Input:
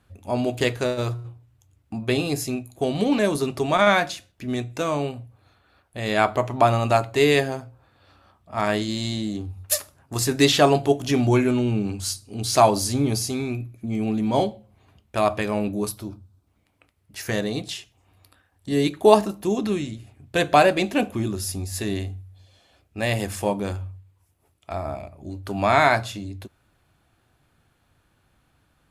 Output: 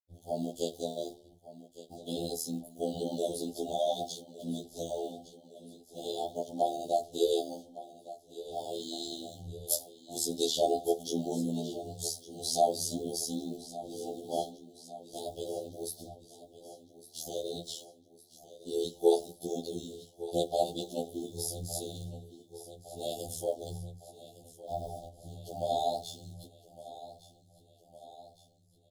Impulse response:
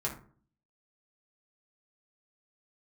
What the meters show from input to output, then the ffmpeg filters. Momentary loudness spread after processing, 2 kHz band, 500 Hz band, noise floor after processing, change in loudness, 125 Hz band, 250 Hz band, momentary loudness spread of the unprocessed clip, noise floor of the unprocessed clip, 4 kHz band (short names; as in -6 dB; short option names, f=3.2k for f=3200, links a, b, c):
21 LU, under -40 dB, -10.0 dB, -62 dBFS, -12.0 dB, -18.0 dB, -14.0 dB, 17 LU, -66 dBFS, -10.0 dB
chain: -filter_complex "[0:a]agate=range=-33dB:threshold=-50dB:ratio=3:detection=peak,highpass=50,bass=f=250:g=-6,treble=f=4k:g=3,asplit=2[a][b];[b]acompressor=threshold=-31dB:ratio=6,volume=-0.5dB[c];[a][c]amix=inputs=2:normalize=0,acrusher=bits=6:mix=0:aa=0.5,tremolo=f=79:d=0.889,asuperstop=centerf=1600:order=20:qfactor=0.68,asplit=2[d][e];[e]aecho=0:1:1160|2320|3480|4640|5800|6960:0.158|0.0935|0.0552|0.0326|0.0192|0.0113[f];[d][f]amix=inputs=2:normalize=0,afftfilt=real='re*2*eq(mod(b,4),0)':imag='im*2*eq(mod(b,4),0)':win_size=2048:overlap=0.75,volume=-6.5dB"